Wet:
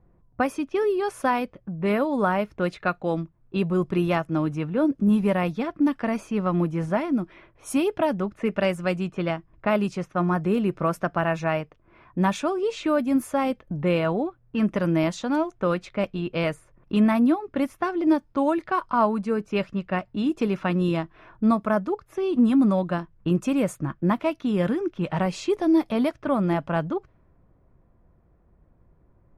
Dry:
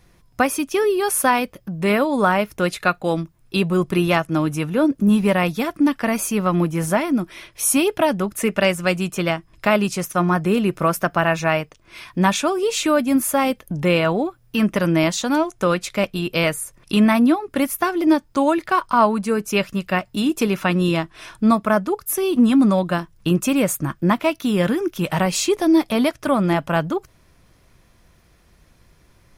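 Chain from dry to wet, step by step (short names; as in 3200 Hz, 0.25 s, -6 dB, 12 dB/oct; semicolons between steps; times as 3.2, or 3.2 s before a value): low-pass opened by the level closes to 980 Hz, open at -13.5 dBFS; high shelf 2000 Hz -9.5 dB; gain -4 dB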